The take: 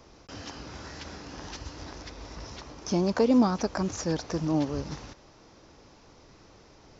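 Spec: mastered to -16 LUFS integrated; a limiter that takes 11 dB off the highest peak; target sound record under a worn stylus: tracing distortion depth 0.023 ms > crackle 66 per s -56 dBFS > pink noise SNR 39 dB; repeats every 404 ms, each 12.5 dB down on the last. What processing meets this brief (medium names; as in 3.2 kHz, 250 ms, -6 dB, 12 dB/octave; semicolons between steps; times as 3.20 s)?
peak limiter -23 dBFS; feedback delay 404 ms, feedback 24%, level -12.5 dB; tracing distortion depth 0.023 ms; crackle 66 per s -56 dBFS; pink noise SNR 39 dB; trim +19.5 dB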